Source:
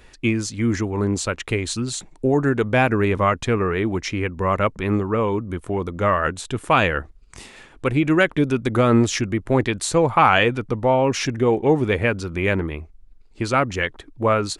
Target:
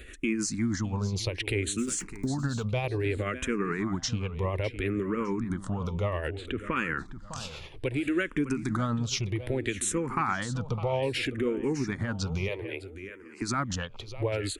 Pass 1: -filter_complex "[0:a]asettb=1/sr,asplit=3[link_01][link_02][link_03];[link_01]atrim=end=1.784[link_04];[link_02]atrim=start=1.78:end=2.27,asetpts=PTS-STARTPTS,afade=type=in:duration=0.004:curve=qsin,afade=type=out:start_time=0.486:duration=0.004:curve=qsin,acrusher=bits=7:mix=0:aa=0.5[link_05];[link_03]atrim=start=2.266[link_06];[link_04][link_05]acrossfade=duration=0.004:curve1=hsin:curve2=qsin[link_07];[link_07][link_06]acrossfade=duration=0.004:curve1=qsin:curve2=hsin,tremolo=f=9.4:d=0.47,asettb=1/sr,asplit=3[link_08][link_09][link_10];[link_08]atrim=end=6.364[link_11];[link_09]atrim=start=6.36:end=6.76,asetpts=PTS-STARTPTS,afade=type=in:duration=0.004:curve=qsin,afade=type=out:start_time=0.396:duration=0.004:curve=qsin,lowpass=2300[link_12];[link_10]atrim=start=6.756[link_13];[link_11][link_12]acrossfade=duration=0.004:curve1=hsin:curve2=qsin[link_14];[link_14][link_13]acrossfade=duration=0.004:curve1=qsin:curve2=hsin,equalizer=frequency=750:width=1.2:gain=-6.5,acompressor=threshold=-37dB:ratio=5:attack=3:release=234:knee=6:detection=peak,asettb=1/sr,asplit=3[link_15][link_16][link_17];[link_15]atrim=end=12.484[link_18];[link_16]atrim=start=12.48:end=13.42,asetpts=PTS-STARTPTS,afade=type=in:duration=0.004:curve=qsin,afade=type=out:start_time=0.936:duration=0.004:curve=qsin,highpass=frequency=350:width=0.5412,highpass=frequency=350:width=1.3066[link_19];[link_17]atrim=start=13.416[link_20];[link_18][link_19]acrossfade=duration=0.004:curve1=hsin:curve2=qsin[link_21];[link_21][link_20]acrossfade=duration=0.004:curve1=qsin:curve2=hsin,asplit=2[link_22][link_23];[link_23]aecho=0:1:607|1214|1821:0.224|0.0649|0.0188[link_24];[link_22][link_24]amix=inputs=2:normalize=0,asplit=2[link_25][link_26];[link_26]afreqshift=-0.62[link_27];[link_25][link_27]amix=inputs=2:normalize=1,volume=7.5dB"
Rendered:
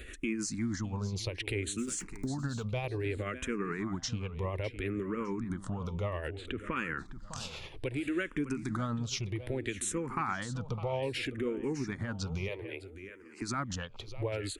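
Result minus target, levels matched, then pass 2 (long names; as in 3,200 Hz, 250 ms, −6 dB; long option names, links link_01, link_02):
downward compressor: peak gain reduction +5 dB
-filter_complex "[0:a]asettb=1/sr,asplit=3[link_01][link_02][link_03];[link_01]atrim=end=1.784[link_04];[link_02]atrim=start=1.78:end=2.27,asetpts=PTS-STARTPTS,afade=type=in:duration=0.004:curve=qsin,afade=type=out:start_time=0.486:duration=0.004:curve=qsin,acrusher=bits=7:mix=0:aa=0.5[link_05];[link_03]atrim=start=2.266[link_06];[link_04][link_05]acrossfade=duration=0.004:curve1=hsin:curve2=qsin[link_07];[link_07][link_06]acrossfade=duration=0.004:curve1=qsin:curve2=hsin,tremolo=f=9.4:d=0.47,asettb=1/sr,asplit=3[link_08][link_09][link_10];[link_08]atrim=end=6.364[link_11];[link_09]atrim=start=6.36:end=6.76,asetpts=PTS-STARTPTS,afade=type=in:duration=0.004:curve=qsin,afade=type=out:start_time=0.396:duration=0.004:curve=qsin,lowpass=2300[link_12];[link_10]atrim=start=6.756[link_13];[link_11][link_12]acrossfade=duration=0.004:curve1=hsin:curve2=qsin[link_14];[link_14][link_13]acrossfade=duration=0.004:curve1=qsin:curve2=hsin,equalizer=frequency=750:width=1.2:gain=-6.5,acompressor=threshold=-30.5dB:ratio=5:attack=3:release=234:knee=6:detection=peak,asettb=1/sr,asplit=3[link_15][link_16][link_17];[link_15]atrim=end=12.484[link_18];[link_16]atrim=start=12.48:end=13.42,asetpts=PTS-STARTPTS,afade=type=in:duration=0.004:curve=qsin,afade=type=out:start_time=0.936:duration=0.004:curve=qsin,highpass=frequency=350:width=0.5412,highpass=frequency=350:width=1.3066[link_19];[link_17]atrim=start=13.416[link_20];[link_18][link_19]acrossfade=duration=0.004:curve1=hsin:curve2=qsin[link_21];[link_21][link_20]acrossfade=duration=0.004:curve1=qsin:curve2=hsin,asplit=2[link_22][link_23];[link_23]aecho=0:1:607|1214|1821:0.224|0.0649|0.0188[link_24];[link_22][link_24]amix=inputs=2:normalize=0,asplit=2[link_25][link_26];[link_26]afreqshift=-0.62[link_27];[link_25][link_27]amix=inputs=2:normalize=1,volume=7.5dB"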